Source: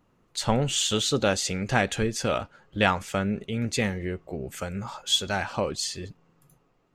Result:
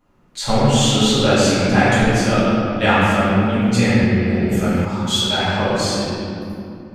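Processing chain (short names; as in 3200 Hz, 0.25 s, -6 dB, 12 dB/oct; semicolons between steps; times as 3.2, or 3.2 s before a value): reverb, pre-delay 4 ms, DRR -11.5 dB; 4.03–4.85 three-band squash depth 100%; gain -2 dB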